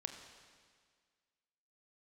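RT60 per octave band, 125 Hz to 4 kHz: 1.7, 1.9, 1.8, 1.8, 1.8, 1.8 s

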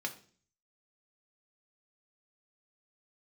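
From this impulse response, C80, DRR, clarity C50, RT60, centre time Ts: 18.0 dB, 4.0 dB, 14.0 dB, 0.45 s, 8 ms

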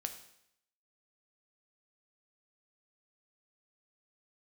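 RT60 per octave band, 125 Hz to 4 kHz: 0.75, 0.75, 0.75, 0.75, 0.75, 0.75 s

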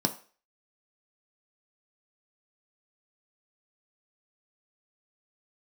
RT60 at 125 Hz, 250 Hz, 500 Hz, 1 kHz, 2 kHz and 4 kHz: 0.30, 0.35, 0.40, 0.40, 0.40, 0.40 s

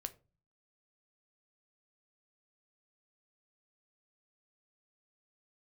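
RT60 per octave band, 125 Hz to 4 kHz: 0.65, 0.60, 0.35, 0.30, 0.25, 0.20 s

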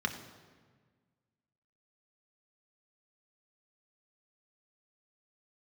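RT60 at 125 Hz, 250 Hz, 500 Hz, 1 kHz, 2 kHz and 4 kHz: 2.0, 1.9, 1.6, 1.5, 1.4, 1.1 s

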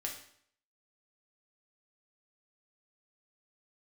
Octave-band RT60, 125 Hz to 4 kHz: 0.60, 0.65, 0.60, 0.60, 0.60, 0.60 s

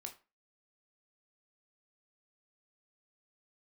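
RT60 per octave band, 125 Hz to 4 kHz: 0.30, 0.30, 0.30, 0.30, 0.30, 0.25 s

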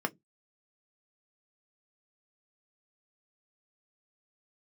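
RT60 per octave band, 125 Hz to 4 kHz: 0.35, 0.25, 0.20, 0.10, 0.10, 0.10 s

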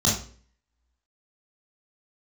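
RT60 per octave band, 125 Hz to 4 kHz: 0.50, 0.50, 0.50, 0.40, 0.40, 0.40 s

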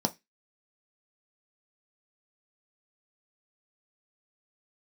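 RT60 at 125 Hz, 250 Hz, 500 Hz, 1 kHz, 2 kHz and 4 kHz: 0.25, 0.20, 0.15, 0.15, 0.25, 0.25 s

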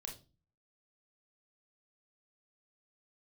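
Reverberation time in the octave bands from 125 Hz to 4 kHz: 0.65, 0.55, 0.35, 0.30, 0.25, 0.30 s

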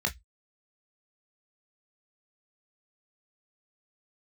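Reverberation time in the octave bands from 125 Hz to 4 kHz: 0.25, 0.10, 0.10, 0.10, 0.15, 0.15 s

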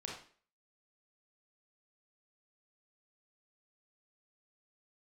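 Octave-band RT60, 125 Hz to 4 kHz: 0.35, 0.45, 0.45, 0.45, 0.45, 0.40 s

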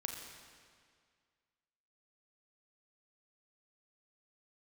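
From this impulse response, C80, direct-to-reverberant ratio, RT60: 4.5 dB, 2.0 dB, 2.0 s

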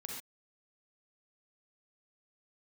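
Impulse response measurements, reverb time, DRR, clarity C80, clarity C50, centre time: not exponential, -1.5 dB, 4.0 dB, 0.0 dB, 49 ms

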